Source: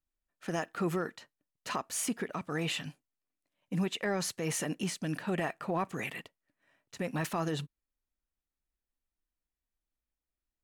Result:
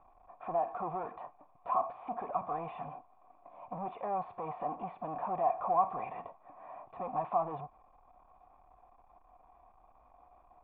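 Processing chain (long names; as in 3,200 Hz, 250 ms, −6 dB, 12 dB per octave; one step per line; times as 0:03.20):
power curve on the samples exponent 0.35
formant resonators in series a
level +8.5 dB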